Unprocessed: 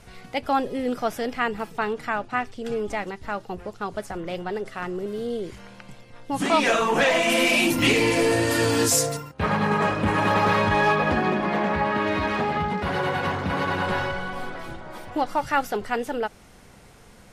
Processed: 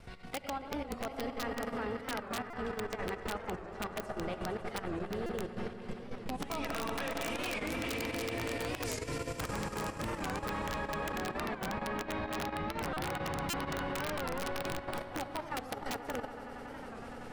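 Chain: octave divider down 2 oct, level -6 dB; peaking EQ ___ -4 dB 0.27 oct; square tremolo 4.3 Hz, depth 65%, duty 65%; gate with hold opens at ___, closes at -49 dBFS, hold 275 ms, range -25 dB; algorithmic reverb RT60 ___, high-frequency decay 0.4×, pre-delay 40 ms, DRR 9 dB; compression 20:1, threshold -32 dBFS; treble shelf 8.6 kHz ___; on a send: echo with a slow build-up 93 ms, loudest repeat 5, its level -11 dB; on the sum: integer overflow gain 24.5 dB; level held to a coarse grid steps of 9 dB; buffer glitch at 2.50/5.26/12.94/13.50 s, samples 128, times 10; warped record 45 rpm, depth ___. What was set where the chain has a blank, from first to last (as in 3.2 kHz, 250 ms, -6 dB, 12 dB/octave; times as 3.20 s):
6.6 kHz, -46 dBFS, 1.1 s, -11.5 dB, 160 cents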